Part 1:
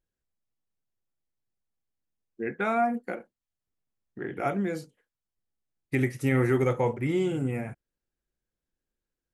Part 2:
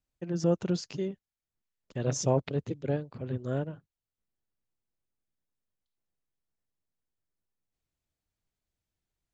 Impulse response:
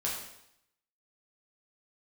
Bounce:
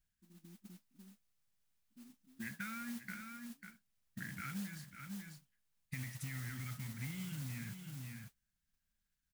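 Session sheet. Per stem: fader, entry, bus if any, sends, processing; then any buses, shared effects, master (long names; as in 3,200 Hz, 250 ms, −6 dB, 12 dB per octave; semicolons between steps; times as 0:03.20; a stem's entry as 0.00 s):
+2.0 dB, 0.00 s, no send, echo send −14 dB, brickwall limiter −21 dBFS, peak gain reduction 9 dB
−9.5 dB, 0.00 s, no send, no echo send, elliptic band-pass filter 230–650 Hz, stop band 40 dB; automatic ducking −14 dB, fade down 0.40 s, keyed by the first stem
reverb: not used
echo: single-tap delay 545 ms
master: Chebyshev band-stop filter 210–1,500 Hz, order 3; noise that follows the level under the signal 10 dB; downward compressor 4 to 1, threshold −43 dBFS, peak gain reduction 16 dB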